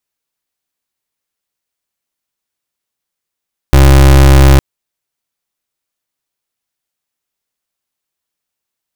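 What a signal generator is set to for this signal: pulse 67.9 Hz, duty 30% -4 dBFS 0.86 s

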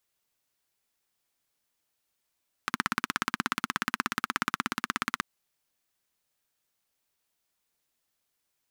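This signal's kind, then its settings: single-cylinder engine model, steady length 2.53 s, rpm 2000, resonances 240/1300 Hz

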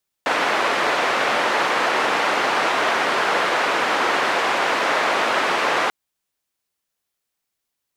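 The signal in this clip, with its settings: noise band 410–1600 Hz, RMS -20 dBFS 5.64 s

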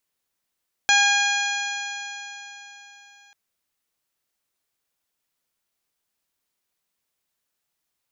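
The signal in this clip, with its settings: stretched partials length 2.44 s, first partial 809 Hz, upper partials 4/1.5/-0.5/-4/-9.5/-3/-4.5 dB, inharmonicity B 0.0023, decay 3.84 s, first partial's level -21.5 dB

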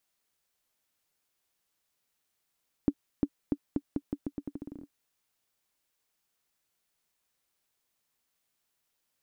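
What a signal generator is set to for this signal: bouncing ball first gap 0.35 s, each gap 0.83, 286 Hz, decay 56 ms -13 dBFS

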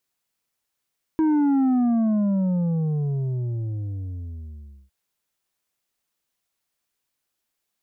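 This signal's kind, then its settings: sub drop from 320 Hz, over 3.71 s, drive 6 dB, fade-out 3.26 s, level -17.5 dB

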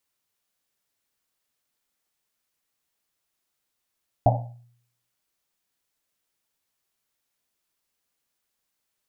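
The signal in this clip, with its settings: Risset drum, pitch 120 Hz, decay 0.66 s, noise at 700 Hz, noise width 270 Hz, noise 45%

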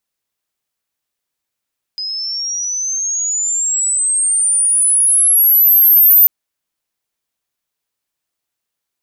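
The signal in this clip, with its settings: chirp logarithmic 5000 Hz -> 14000 Hz -20 dBFS -> -4.5 dBFS 4.29 s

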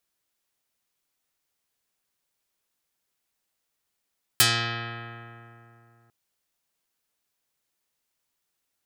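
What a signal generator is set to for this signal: plucked string A#2, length 1.70 s, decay 3.01 s, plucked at 0.39, dark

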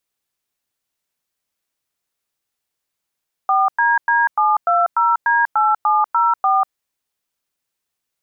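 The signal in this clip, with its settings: DTMF "4DD720D8704", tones 0.193 s, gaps 0.102 s, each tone -15 dBFS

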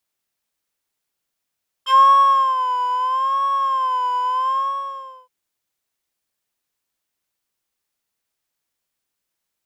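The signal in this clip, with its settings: synth patch with vibrato C6, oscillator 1 square, interval 0 st, oscillator 2 level -17 dB, sub -11.5 dB, noise -19.5 dB, filter bandpass, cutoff 620 Hz, Q 2.4, filter envelope 2.5 oct, filter decay 0.08 s, filter sustain 35%, attack 43 ms, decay 0.64 s, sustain -10 dB, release 0.77 s, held 2.65 s, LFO 0.77 Hz, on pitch 91 cents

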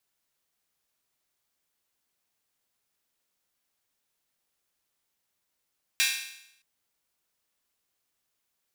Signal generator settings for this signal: open hi-hat length 0.62 s, high-pass 2200 Hz, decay 0.77 s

